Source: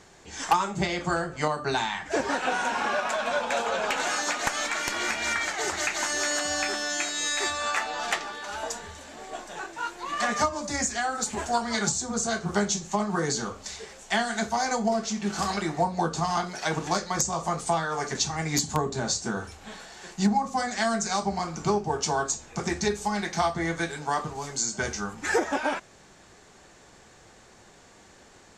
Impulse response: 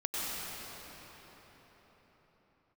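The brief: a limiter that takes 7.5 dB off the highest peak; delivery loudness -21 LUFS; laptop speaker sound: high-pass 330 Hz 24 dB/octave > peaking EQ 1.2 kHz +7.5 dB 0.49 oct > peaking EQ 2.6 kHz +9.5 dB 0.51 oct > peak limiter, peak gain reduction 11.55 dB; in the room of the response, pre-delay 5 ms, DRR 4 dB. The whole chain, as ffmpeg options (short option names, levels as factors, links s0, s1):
-filter_complex "[0:a]alimiter=limit=0.0944:level=0:latency=1,asplit=2[s0][s1];[1:a]atrim=start_sample=2205,adelay=5[s2];[s1][s2]afir=irnorm=-1:irlink=0,volume=0.282[s3];[s0][s3]amix=inputs=2:normalize=0,highpass=f=330:w=0.5412,highpass=f=330:w=1.3066,equalizer=f=1200:t=o:w=0.49:g=7.5,equalizer=f=2600:t=o:w=0.51:g=9.5,volume=3.16,alimiter=limit=0.237:level=0:latency=1"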